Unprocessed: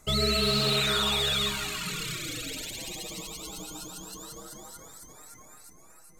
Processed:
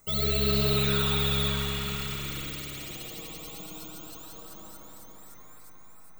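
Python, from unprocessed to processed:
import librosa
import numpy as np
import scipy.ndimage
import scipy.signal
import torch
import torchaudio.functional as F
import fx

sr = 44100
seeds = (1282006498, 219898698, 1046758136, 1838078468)

y = (np.kron(scipy.signal.resample_poly(x, 1, 2), np.eye(2)[0]) * 2)[:len(x)]
y = fx.rev_spring(y, sr, rt60_s=3.7, pass_ms=(58,), chirp_ms=75, drr_db=-1.0)
y = y * librosa.db_to_amplitude(-6.0)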